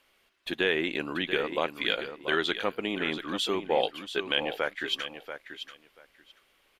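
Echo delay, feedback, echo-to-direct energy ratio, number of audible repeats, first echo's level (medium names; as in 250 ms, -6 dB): 685 ms, 16%, -10.0 dB, 2, -10.0 dB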